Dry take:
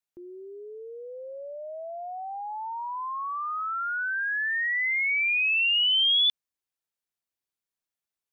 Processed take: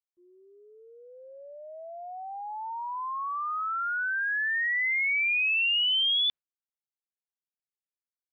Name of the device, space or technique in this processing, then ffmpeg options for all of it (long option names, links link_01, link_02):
hearing-loss simulation: -af "lowpass=3200,agate=range=-33dB:threshold=-33dB:ratio=3:detection=peak"